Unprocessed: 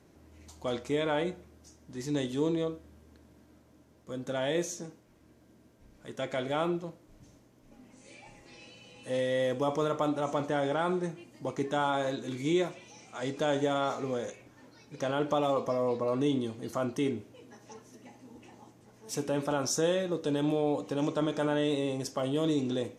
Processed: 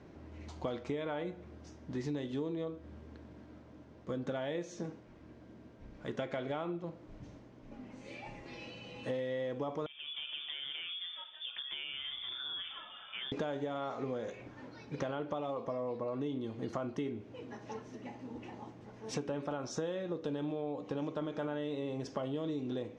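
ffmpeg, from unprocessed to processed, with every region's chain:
-filter_complex "[0:a]asettb=1/sr,asplit=3[a][b][c];[a]atrim=end=9.864[d];[b]atrim=start=9.86:end=13.32,asetpts=PTS-STARTPTS,afade=t=in:d=0.004:c=qsin,afade=t=out:st=3.456:d=0.004:c=qsin,acompressor=threshold=-40dB:ratio=12:attack=3.2:release=140:knee=1:detection=peak,lowpass=f=3.1k:t=q:w=0.5098,lowpass=f=3.1k:t=q:w=0.6013,lowpass=f=3.1k:t=q:w=0.9,lowpass=f=3.1k:t=q:w=2.563,afreqshift=-3700[e];[c]atrim=start=13.316[f];[d][e]acrossfade=d=0.004:c1=hsin:c2=qsin[g];[g][f]acrossfade=d=0.004:c1=qsin:c2=hsin,lowpass=5.1k,aemphasis=mode=reproduction:type=50kf,acompressor=threshold=-40dB:ratio=10,volume=6dB"

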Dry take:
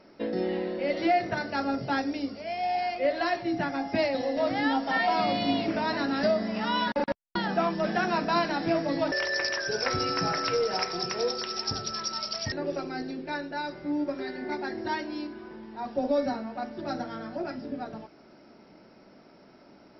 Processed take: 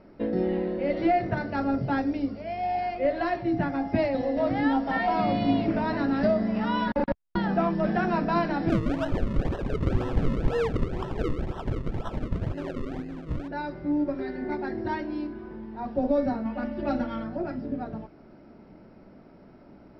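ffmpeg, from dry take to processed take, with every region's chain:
-filter_complex "[0:a]asettb=1/sr,asplit=3[a][b][c];[a]atrim=end=8.694[d];[b]atrim=start=8.69:end=13.48,asetpts=PTS-STARTPTS,afade=t=in:d=0.004:c=qsin,afade=t=out:st=4.786:d=0.004:c=qsin,flanger=delay=6.1:depth=1.8:regen=46:speed=1.1:shape=sinusoidal,acrusher=samples=38:mix=1:aa=0.000001:lfo=1:lforange=38:lforate=2[e];[c]atrim=start=13.476[f];[d][e]acrossfade=d=0.004:c1=hsin:c2=qsin[g];[g][f]acrossfade=d=0.004:c1=qsin:c2=hsin,asettb=1/sr,asplit=3[h][i][j];[h]atrim=end=16.454[k];[i]atrim=start=16.45:end=17.24,asetpts=PTS-STARTPTS,afade=t=in:d=0.004:c=qsin,afade=t=out:st=0.786:d=0.004:c=qsin,equalizer=f=2.8k:w=2.1:g=8,bandreject=f=320:w=9.1,aecho=1:1:3.5:0.91,atrim=end_sample=34839[l];[j]atrim=start=17.236[m];[k][l]acrossfade=d=0.004:c1=hsin:c2=qsin[n];[n][m]acrossfade=d=0.004:c1=qsin:c2=hsin,lowpass=f=2.9k:p=1,aemphasis=mode=reproduction:type=bsi"

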